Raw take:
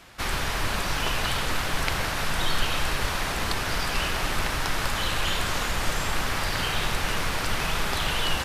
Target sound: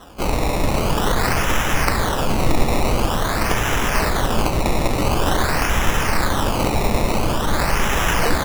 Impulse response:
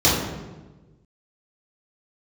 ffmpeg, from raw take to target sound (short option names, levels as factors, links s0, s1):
-filter_complex "[0:a]acrusher=samples=19:mix=1:aa=0.000001:lfo=1:lforange=19:lforate=0.47,asplit=2[s0][s1];[1:a]atrim=start_sample=2205,asetrate=29988,aresample=44100[s2];[s1][s2]afir=irnorm=-1:irlink=0,volume=0.0133[s3];[s0][s3]amix=inputs=2:normalize=0,volume=2.37"